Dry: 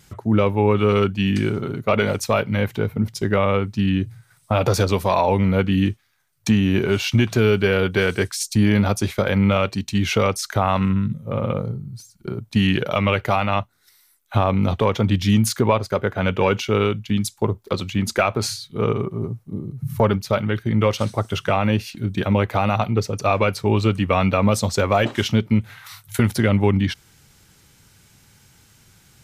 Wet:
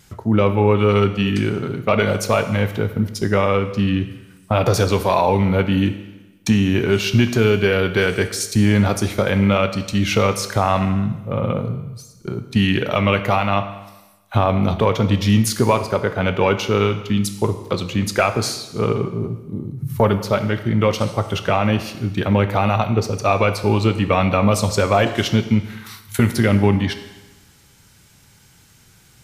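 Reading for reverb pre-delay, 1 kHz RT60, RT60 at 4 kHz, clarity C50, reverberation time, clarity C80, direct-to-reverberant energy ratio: 17 ms, 1.1 s, 1.1 s, 11.0 dB, 1.1 s, 13.0 dB, 9.0 dB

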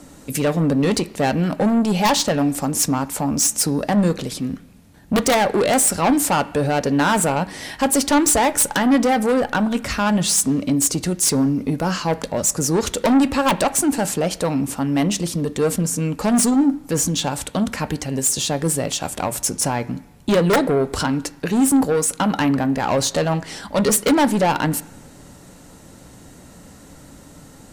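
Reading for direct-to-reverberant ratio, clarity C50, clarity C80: 11.5 dB, 17.5 dB, 20.0 dB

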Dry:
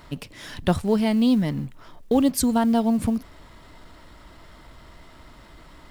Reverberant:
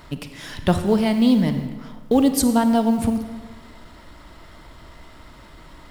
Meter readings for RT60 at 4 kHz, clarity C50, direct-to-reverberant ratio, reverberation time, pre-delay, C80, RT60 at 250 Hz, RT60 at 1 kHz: 1.1 s, 9.0 dB, 8.0 dB, 1.5 s, 35 ms, 10.5 dB, 1.4 s, 1.5 s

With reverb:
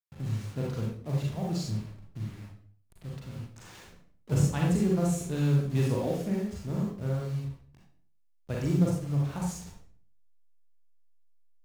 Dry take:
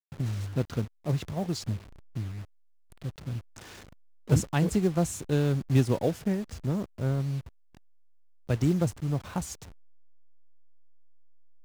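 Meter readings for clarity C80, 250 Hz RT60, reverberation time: 6.5 dB, 0.60 s, 0.50 s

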